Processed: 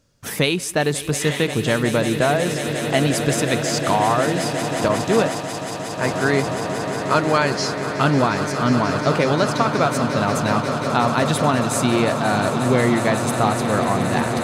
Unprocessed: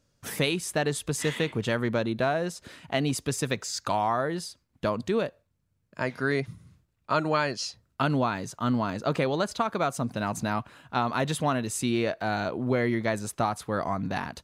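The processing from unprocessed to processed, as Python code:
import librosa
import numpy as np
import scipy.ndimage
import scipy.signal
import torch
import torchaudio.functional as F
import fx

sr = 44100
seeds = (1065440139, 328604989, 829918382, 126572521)

p1 = x + fx.echo_swell(x, sr, ms=180, loudest=8, wet_db=-13.0, dry=0)
p2 = fx.band_widen(p1, sr, depth_pct=100, at=(4.88, 6.14))
y = p2 * 10.0 ** (7.0 / 20.0)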